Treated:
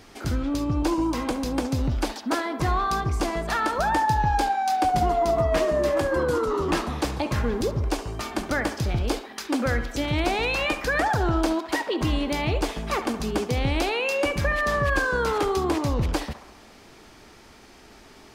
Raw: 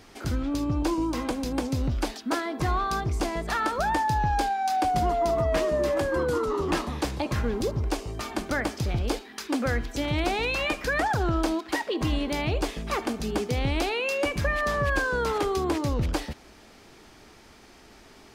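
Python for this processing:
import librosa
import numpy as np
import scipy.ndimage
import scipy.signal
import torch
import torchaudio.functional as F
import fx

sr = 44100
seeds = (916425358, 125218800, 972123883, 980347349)

y = fx.echo_banded(x, sr, ms=68, feedback_pct=69, hz=1000.0, wet_db=-10.0)
y = y * 10.0 ** (2.0 / 20.0)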